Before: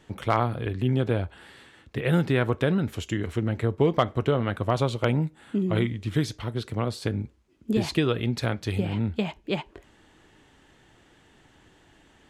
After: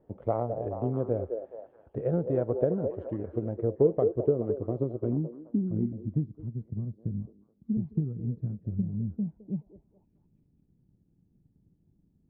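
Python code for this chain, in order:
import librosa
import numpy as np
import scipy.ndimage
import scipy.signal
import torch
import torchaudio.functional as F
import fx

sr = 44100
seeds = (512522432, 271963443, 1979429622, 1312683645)

y = fx.echo_stepped(x, sr, ms=212, hz=490.0, octaves=0.7, feedback_pct=70, wet_db=-3.0)
y = fx.filter_sweep_lowpass(y, sr, from_hz=580.0, to_hz=180.0, start_s=3.45, end_s=6.68, q=2.4)
y = fx.transient(y, sr, attack_db=3, sustain_db=-2)
y = y * 10.0 ** (-8.5 / 20.0)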